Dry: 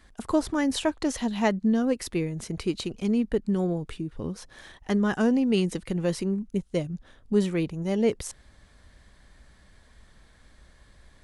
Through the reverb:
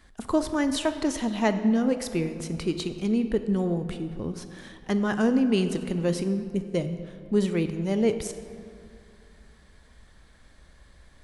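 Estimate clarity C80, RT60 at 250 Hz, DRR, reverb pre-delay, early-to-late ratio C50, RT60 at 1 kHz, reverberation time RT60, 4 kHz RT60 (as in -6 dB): 11.0 dB, 2.5 s, 9.0 dB, 20 ms, 10.0 dB, 2.3 s, 2.4 s, 1.4 s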